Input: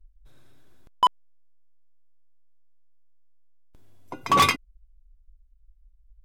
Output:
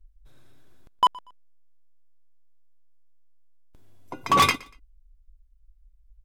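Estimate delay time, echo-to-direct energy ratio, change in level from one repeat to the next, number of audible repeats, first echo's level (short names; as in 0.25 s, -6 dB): 0.119 s, -22.5 dB, -11.5 dB, 2, -23.0 dB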